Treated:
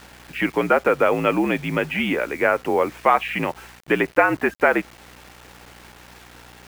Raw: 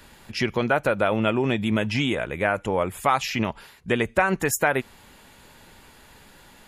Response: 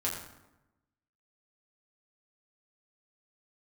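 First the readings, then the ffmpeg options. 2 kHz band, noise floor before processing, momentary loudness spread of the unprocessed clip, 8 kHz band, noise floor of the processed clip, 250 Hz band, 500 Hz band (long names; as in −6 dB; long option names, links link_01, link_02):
+3.5 dB, −52 dBFS, 6 LU, −11.0 dB, −48 dBFS, +1.5 dB, +4.0 dB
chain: -af "highpass=frequency=280:width_type=q:width=0.5412,highpass=frequency=280:width_type=q:width=1.307,lowpass=frequency=2900:width_type=q:width=0.5176,lowpass=frequency=2900:width_type=q:width=0.7071,lowpass=frequency=2900:width_type=q:width=1.932,afreqshift=-59,aeval=exprs='val(0)+0.00224*(sin(2*PI*60*n/s)+sin(2*PI*2*60*n/s)/2+sin(2*PI*3*60*n/s)/3+sin(2*PI*4*60*n/s)/4+sin(2*PI*5*60*n/s)/5)':channel_layout=same,acrusher=bits=7:mix=0:aa=0.000001,volume=4.5dB"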